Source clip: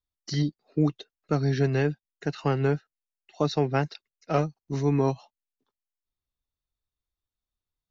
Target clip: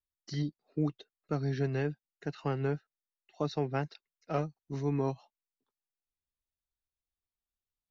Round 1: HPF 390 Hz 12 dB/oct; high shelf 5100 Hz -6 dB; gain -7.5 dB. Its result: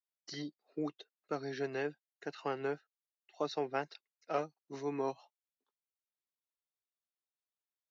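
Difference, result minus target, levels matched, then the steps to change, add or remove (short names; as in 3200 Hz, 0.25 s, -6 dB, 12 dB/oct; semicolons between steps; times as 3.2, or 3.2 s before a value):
500 Hz band +3.0 dB
remove: HPF 390 Hz 12 dB/oct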